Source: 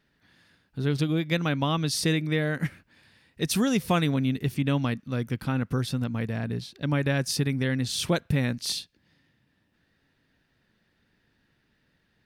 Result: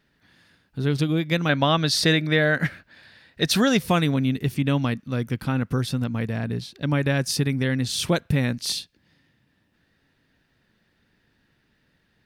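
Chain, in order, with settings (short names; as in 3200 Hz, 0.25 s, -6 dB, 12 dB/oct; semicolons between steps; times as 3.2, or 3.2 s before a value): 1.49–3.79 fifteen-band EQ 630 Hz +7 dB, 1600 Hz +8 dB, 4000 Hz +7 dB, 10000 Hz -4 dB; gain +3 dB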